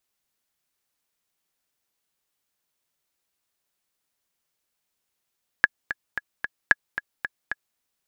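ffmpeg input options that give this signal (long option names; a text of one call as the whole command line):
ffmpeg -f lavfi -i "aevalsrc='pow(10,(-1.5-12.5*gte(mod(t,4*60/224),60/224))/20)*sin(2*PI*1680*mod(t,60/224))*exp(-6.91*mod(t,60/224)/0.03)':duration=2.14:sample_rate=44100" out.wav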